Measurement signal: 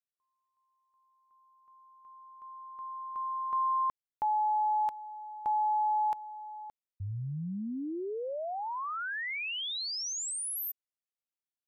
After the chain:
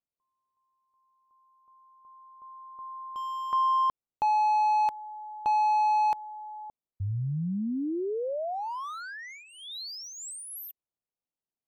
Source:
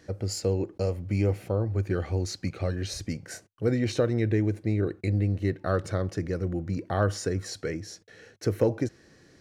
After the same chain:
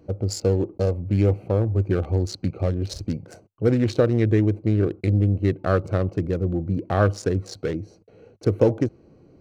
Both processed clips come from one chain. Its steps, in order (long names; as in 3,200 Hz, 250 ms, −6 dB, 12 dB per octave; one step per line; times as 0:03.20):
adaptive Wiener filter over 25 samples
level +6 dB